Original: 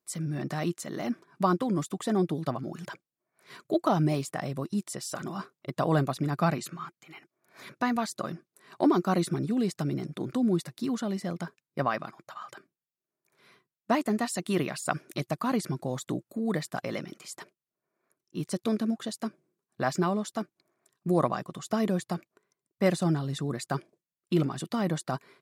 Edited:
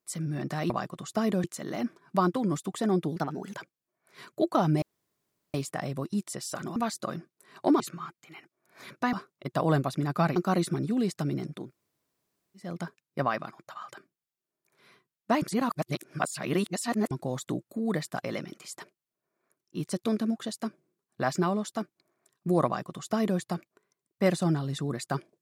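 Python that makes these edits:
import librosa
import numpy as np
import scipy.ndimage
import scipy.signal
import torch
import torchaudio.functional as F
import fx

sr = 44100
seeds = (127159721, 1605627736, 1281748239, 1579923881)

y = fx.edit(x, sr, fx.speed_span(start_s=2.42, length_s=0.46, speed=1.15),
    fx.insert_room_tone(at_s=4.14, length_s=0.72),
    fx.swap(start_s=5.36, length_s=1.23, other_s=7.92, other_length_s=1.04),
    fx.room_tone_fill(start_s=10.22, length_s=1.04, crossfade_s=0.24),
    fx.reverse_span(start_s=14.02, length_s=1.69),
    fx.duplicate(start_s=21.26, length_s=0.74, to_s=0.7), tone=tone)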